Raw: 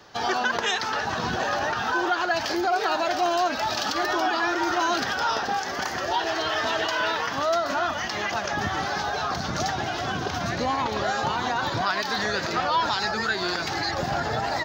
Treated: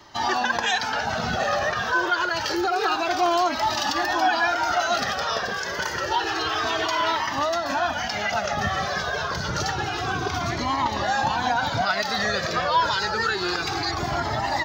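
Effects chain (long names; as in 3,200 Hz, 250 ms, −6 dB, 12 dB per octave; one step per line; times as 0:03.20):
flanger whose copies keep moving one way falling 0.28 Hz
level +6 dB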